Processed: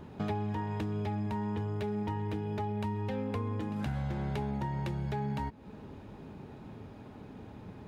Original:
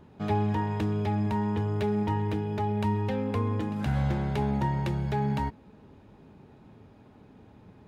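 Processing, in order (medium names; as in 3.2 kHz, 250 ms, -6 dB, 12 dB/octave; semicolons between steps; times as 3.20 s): compression 5:1, threshold -38 dBFS, peak gain reduction 14 dB; trim +5.5 dB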